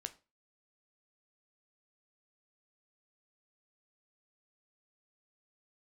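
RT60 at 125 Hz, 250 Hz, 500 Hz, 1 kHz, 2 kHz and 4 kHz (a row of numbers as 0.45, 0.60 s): 0.35, 0.35, 0.35, 0.30, 0.25, 0.25 s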